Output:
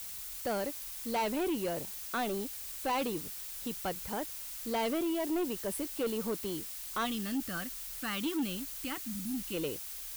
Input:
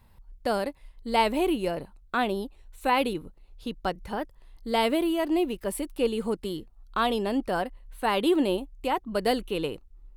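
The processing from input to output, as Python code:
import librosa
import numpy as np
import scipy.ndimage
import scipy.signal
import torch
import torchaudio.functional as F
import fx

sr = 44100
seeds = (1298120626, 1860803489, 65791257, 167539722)

y = fx.spec_box(x, sr, start_s=7.05, length_s=2.49, low_hz=340.0, high_hz=1100.0, gain_db=-15)
y = scipy.signal.sosfilt(scipy.signal.butter(2, 51.0, 'highpass', fs=sr, output='sos'), y)
y = fx.spec_repair(y, sr, seeds[0], start_s=9.07, length_s=0.3, low_hz=320.0, high_hz=9200.0, source='both')
y = fx.dmg_noise_colour(y, sr, seeds[1], colour='blue', level_db=-39.0)
y = 10.0 ** (-24.0 / 20.0) * np.tanh(y / 10.0 ** (-24.0 / 20.0))
y = y * 10.0 ** (-3.5 / 20.0)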